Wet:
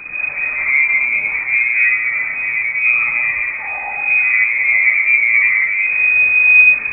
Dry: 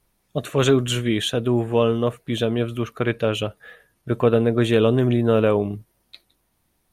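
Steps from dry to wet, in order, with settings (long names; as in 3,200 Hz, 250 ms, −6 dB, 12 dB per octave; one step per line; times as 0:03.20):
linear delta modulator 16 kbit/s, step −20.5 dBFS
dynamic equaliser 170 Hz, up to +4 dB, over −28 dBFS, Q 0.77
in parallel at +1.5 dB: brickwall limiter −16.5 dBFS, peak gain reduction 13 dB
on the sum: high-frequency loss of the air 130 metres
comb and all-pass reverb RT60 1.4 s, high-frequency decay 0.8×, pre-delay 20 ms, DRR −4 dB
voice inversion scrambler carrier 2,500 Hz
every bin expanded away from the loudest bin 1.5 to 1
level −5 dB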